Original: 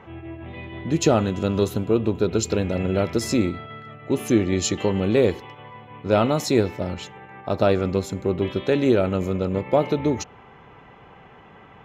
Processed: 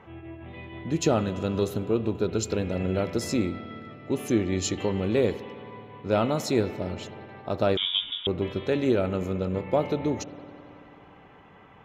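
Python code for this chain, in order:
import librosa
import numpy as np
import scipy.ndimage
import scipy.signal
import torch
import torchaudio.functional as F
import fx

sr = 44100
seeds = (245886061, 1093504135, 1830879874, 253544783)

y = fx.rev_spring(x, sr, rt60_s=3.1, pass_ms=(54,), chirp_ms=40, drr_db=13.5)
y = fx.freq_invert(y, sr, carrier_hz=3600, at=(7.77, 8.27))
y = F.gain(torch.from_numpy(y), -5.0).numpy()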